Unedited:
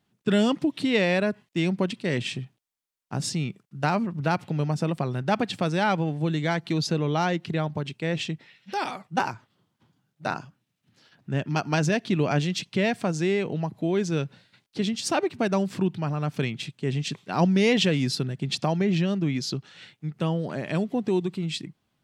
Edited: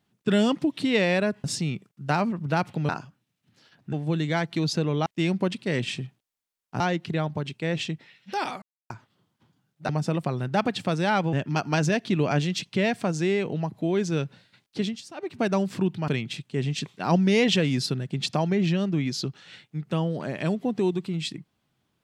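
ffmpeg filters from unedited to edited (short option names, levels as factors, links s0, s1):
-filter_complex "[0:a]asplit=13[s0][s1][s2][s3][s4][s5][s6][s7][s8][s9][s10][s11][s12];[s0]atrim=end=1.442[s13];[s1]atrim=start=3.178:end=4.632[s14];[s2]atrim=start=10.288:end=11.332[s15];[s3]atrim=start=6.068:end=7.202[s16];[s4]atrim=start=1.438:end=3.182[s17];[s5]atrim=start=7.198:end=9.02,asetpts=PTS-STARTPTS,afade=t=out:st=1.818:d=0.004:c=hsin[s18];[s6]atrim=start=9.02:end=9.3,asetpts=PTS-STARTPTS,volume=0[s19];[s7]atrim=start=9.3:end=10.292,asetpts=PTS-STARTPTS,afade=t=in:d=0.004:c=hsin[s20];[s8]atrim=start=4.628:end=6.072[s21];[s9]atrim=start=11.328:end=15.07,asetpts=PTS-STARTPTS,afade=t=out:st=3.472:d=0.27:silence=0.125893[s22];[s10]atrim=start=15.07:end=15.15,asetpts=PTS-STARTPTS,volume=0.126[s23];[s11]atrim=start=15.15:end=16.082,asetpts=PTS-STARTPTS,afade=t=in:d=0.27:silence=0.125893[s24];[s12]atrim=start=16.368[s25];[s13][s14]acrossfade=d=0.004:c1=hsin:c2=hsin[s26];[s26][s15]acrossfade=d=0.004:c1=hsin:c2=hsin[s27];[s27][s16]acrossfade=d=0.004:c1=hsin:c2=hsin[s28];[s28][s17]acrossfade=d=0.004:c1=hsin:c2=hsin[s29];[s18][s19][s20]concat=n=3:v=0:a=1[s30];[s29][s30]acrossfade=d=0.004:c1=hsin:c2=hsin[s31];[s31][s21]acrossfade=d=0.004:c1=hsin:c2=hsin[s32];[s22][s23][s24]concat=n=3:v=0:a=1[s33];[s32][s33]acrossfade=d=0.004:c1=hsin:c2=hsin[s34];[s34][s25]acrossfade=d=0.004:c1=hsin:c2=hsin"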